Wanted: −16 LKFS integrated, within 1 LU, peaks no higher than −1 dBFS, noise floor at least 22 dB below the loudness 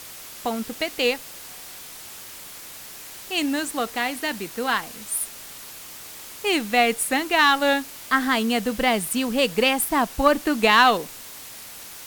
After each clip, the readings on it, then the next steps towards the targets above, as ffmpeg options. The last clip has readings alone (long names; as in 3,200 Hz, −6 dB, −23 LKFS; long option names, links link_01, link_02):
background noise floor −40 dBFS; target noise floor −44 dBFS; integrated loudness −22.0 LKFS; sample peak −4.0 dBFS; target loudness −16.0 LKFS
→ -af "afftdn=noise_reduction=6:noise_floor=-40"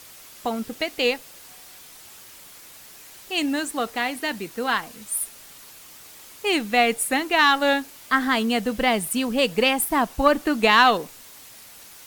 background noise floor −46 dBFS; integrated loudness −22.0 LKFS; sample peak −4.0 dBFS; target loudness −16.0 LKFS
→ -af "volume=6dB,alimiter=limit=-1dB:level=0:latency=1"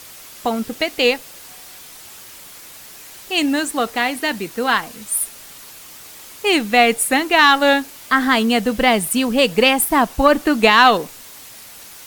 integrated loudness −16.5 LKFS; sample peak −1.0 dBFS; background noise floor −40 dBFS